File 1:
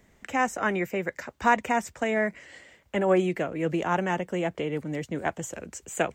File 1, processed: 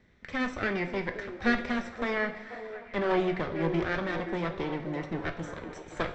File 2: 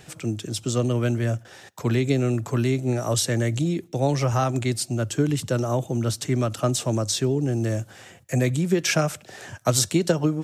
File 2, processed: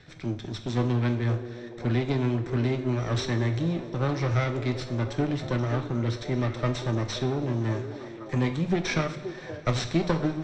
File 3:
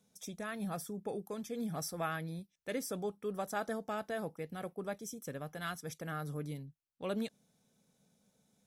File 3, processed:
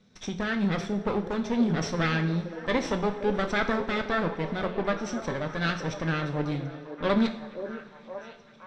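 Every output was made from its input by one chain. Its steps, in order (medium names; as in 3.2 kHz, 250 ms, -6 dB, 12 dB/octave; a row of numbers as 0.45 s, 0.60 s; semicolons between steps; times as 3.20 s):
comb filter that takes the minimum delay 0.53 ms; low-pass 4.9 kHz 24 dB/octave; repeats whose band climbs or falls 525 ms, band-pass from 420 Hz, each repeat 0.7 oct, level -7 dB; two-slope reverb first 0.54 s, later 4.4 s, from -19 dB, DRR 5.5 dB; peak normalisation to -12 dBFS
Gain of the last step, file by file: -2.5 dB, -4.0 dB, +12.5 dB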